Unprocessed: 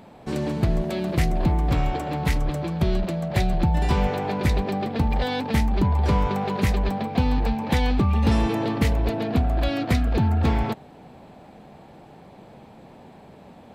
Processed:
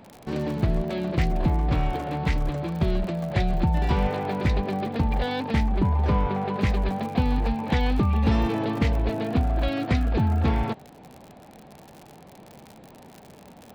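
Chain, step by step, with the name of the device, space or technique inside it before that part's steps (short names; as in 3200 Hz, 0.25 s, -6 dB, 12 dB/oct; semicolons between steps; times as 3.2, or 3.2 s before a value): lo-fi chain (LPF 4500 Hz 12 dB/oct; wow and flutter 27 cents; crackle 66/s -32 dBFS); 5.69–6.61 high shelf 5000 Hz -10 dB; gain -1.5 dB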